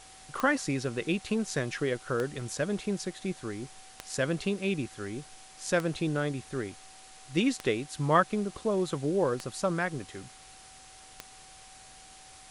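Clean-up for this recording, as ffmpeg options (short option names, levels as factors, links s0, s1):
-af "adeclick=t=4,bandreject=f=760:w=30,afftdn=nr=24:nf=-52"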